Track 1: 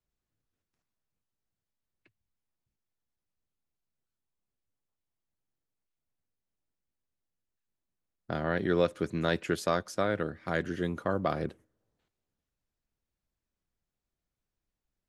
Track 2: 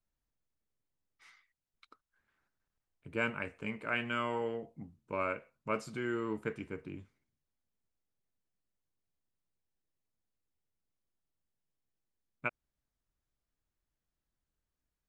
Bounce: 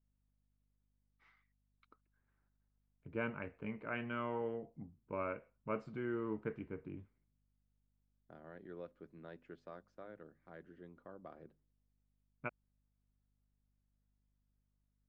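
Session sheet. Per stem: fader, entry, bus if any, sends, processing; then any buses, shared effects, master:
-20.0 dB, 0.00 s, no send, high-pass 190 Hz 6 dB/octave; hum notches 50/100/150/200/250 Hz; hum 50 Hz, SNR 22 dB
-2.0 dB, 0.00 s, no send, none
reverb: none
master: tape spacing loss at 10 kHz 37 dB

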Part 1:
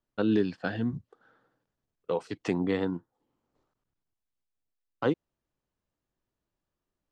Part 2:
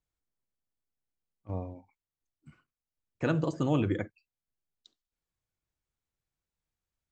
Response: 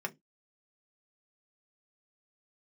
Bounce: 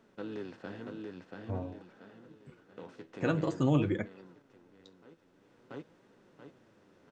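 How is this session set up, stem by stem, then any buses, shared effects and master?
-14.0 dB, 0.00 s, no send, echo send -3.5 dB, spectral levelling over time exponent 0.4; auto duck -24 dB, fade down 0.60 s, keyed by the second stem
+3.0 dB, 0.00 s, no send, no echo send, none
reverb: none
echo: feedback delay 683 ms, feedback 39%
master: flange 0.49 Hz, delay 4.3 ms, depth 8.1 ms, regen +50%

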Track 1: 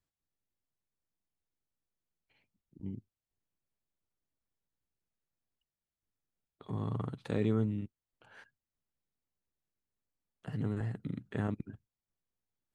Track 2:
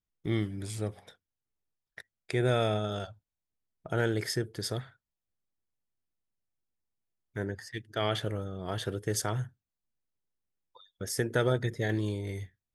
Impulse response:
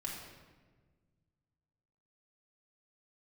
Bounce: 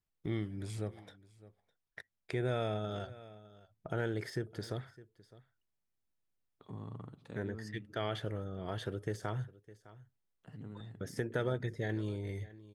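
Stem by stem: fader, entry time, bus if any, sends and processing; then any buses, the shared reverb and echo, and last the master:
-7.0 dB, 0.00 s, send -19.5 dB, no echo send, auto duck -7 dB, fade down 0.70 s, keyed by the second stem
-0.5 dB, 0.00 s, no send, echo send -23.5 dB, de-esser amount 80%; treble shelf 4.5 kHz -8.5 dB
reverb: on, RT60 1.4 s, pre-delay 3 ms
echo: delay 608 ms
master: compression 1.5:1, threshold -41 dBFS, peak gain reduction 7 dB

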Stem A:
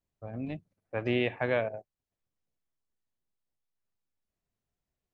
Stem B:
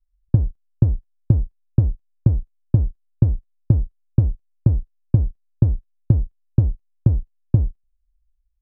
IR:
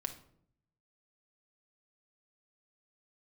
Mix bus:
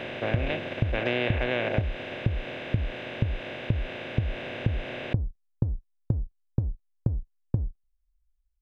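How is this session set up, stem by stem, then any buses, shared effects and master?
-1.5 dB, 0.00 s, no send, spectral levelling over time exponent 0.2; treble shelf 2.7 kHz +9 dB
-5.0 dB, 0.00 s, no send, none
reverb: none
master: compression 4:1, threshold -22 dBFS, peak gain reduction 8 dB

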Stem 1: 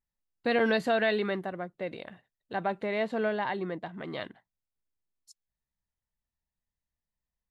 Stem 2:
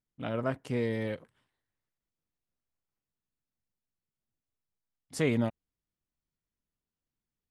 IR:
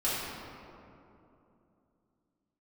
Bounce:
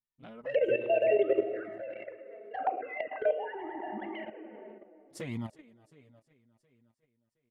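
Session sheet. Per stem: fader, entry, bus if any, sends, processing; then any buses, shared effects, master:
+2.0 dB, 0.00 s, send -10 dB, no echo send, formants replaced by sine waves
-3.0 dB, 0.00 s, no send, echo send -16.5 dB, auto duck -20 dB, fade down 1.30 s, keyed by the first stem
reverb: on, RT60 2.9 s, pre-delay 3 ms
echo: feedback delay 359 ms, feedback 54%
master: level held to a coarse grid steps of 11 dB; touch-sensitive flanger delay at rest 8.4 ms, full sweep at -25.5 dBFS

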